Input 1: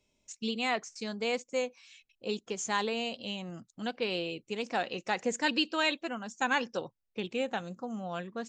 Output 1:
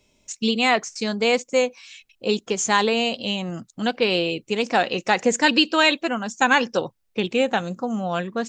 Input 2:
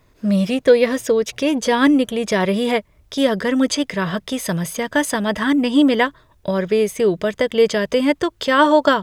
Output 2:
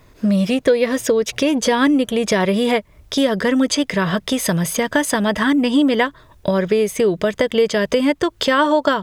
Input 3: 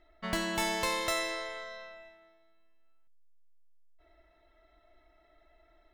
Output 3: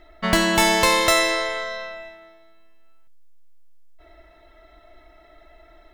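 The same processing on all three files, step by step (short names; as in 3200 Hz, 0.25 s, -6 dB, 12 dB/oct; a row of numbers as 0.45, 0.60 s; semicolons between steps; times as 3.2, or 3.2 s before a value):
compressor 2.5:1, threshold -23 dBFS; normalise peaks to -3 dBFS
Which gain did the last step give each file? +12.0, +7.0, +14.0 dB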